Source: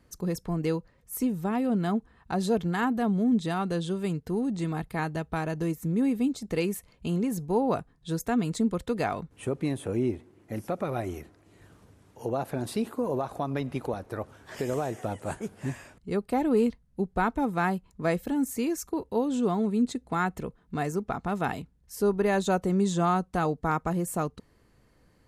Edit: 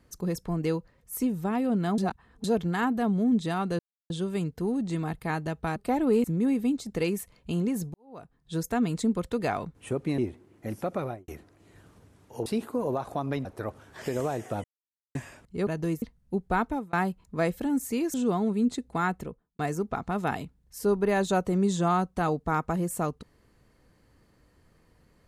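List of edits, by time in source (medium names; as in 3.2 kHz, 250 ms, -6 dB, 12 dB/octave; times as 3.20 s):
1.98–2.44 s: reverse
3.79 s: insert silence 0.31 s
5.45–5.80 s: swap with 16.20–16.68 s
7.50–8.11 s: fade in quadratic
9.74–10.04 s: delete
10.85–11.14 s: studio fade out
12.32–12.70 s: delete
13.69–13.98 s: delete
15.17–15.68 s: mute
17.33–17.59 s: fade out
18.80–19.31 s: delete
20.28–20.76 s: studio fade out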